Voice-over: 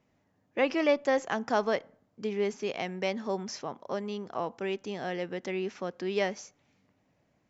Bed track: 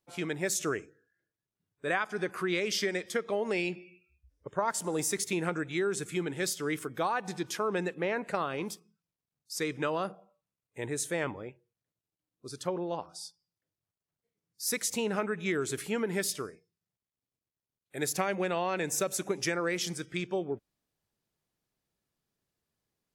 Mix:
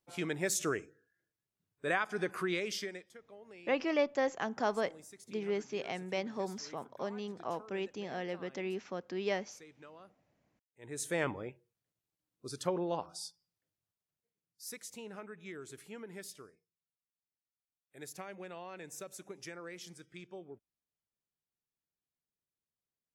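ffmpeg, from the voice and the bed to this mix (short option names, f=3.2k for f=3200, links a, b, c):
-filter_complex "[0:a]adelay=3100,volume=-5dB[a];[1:a]volume=20.5dB,afade=t=out:st=2.37:d=0.74:silence=0.0891251,afade=t=in:st=10.79:d=0.41:silence=0.0749894,afade=t=out:st=13.49:d=1.28:silence=0.177828[b];[a][b]amix=inputs=2:normalize=0"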